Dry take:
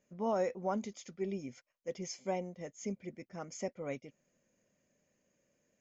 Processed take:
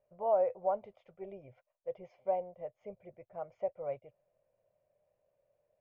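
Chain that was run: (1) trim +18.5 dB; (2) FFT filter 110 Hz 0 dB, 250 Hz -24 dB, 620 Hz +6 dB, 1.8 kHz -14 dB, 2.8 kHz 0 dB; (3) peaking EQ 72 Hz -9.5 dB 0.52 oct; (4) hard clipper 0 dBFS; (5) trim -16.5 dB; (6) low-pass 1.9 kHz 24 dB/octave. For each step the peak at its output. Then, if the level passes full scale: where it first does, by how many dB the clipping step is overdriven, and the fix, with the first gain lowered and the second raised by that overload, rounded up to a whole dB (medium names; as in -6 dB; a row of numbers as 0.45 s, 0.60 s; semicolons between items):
-3.5 dBFS, -2.5 dBFS, -2.5 dBFS, -2.5 dBFS, -19.0 dBFS, -19.0 dBFS; nothing clips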